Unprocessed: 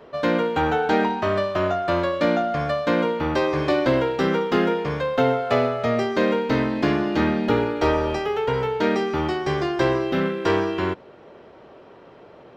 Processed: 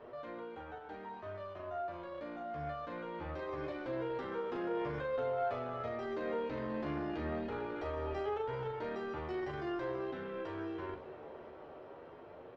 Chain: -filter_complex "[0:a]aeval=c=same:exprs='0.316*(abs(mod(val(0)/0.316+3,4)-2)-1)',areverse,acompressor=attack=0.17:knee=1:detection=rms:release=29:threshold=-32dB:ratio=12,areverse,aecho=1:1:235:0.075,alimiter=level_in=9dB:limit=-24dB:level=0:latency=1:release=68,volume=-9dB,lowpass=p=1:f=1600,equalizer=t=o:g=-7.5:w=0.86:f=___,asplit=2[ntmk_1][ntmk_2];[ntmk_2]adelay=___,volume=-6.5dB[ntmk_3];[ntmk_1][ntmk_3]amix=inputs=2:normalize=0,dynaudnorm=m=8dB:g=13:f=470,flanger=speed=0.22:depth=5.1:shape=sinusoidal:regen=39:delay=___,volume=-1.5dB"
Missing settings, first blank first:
190, 40, 8.3